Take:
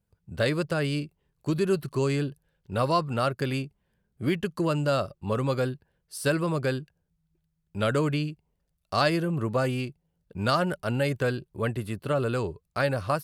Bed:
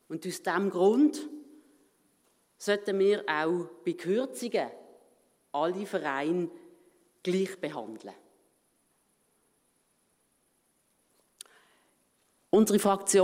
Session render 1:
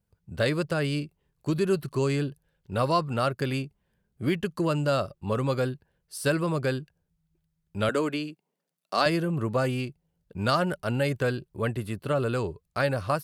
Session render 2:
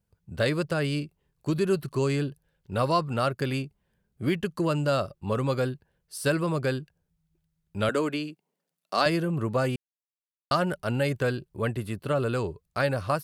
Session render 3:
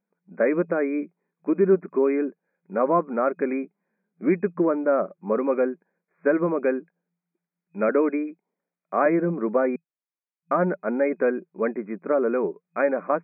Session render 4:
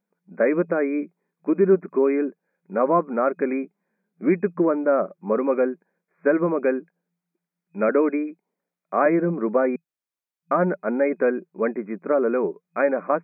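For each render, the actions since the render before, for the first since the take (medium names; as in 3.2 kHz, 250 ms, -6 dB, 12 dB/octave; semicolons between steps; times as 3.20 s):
7.89–9.06 s: high-pass 210 Hz 24 dB/octave
9.76–10.51 s: mute
FFT band-pass 170–2500 Hz; dynamic bell 390 Hz, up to +7 dB, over -38 dBFS, Q 0.72
trim +1.5 dB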